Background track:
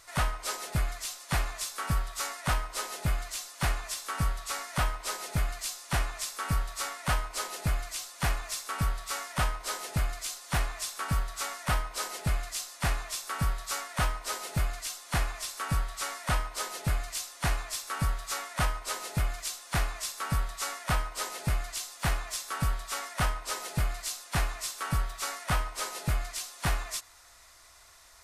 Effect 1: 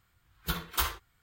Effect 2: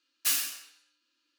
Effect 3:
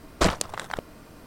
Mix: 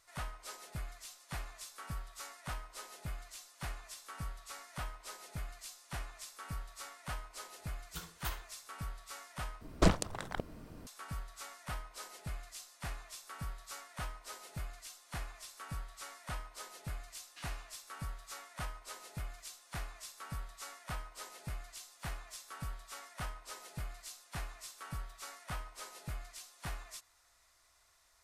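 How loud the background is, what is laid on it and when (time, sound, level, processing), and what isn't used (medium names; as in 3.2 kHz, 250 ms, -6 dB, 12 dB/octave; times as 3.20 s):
background track -13.5 dB
7.47 s: add 1 -14 dB
9.61 s: replace with 3 -9.5 dB + bass shelf 390 Hz +9 dB
17.11 s: add 2 -17.5 dB + low-pass 3.4 kHz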